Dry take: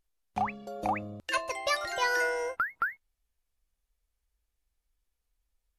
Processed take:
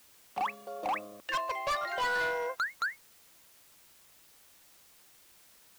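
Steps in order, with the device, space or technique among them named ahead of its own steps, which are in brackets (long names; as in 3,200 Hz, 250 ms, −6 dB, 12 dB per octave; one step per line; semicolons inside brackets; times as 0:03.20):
drive-through speaker (band-pass filter 410–3,200 Hz; parametric band 1,100 Hz +9 dB 0.21 octaves; hard clipping −27.5 dBFS, distortion −9 dB; white noise bed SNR 23 dB)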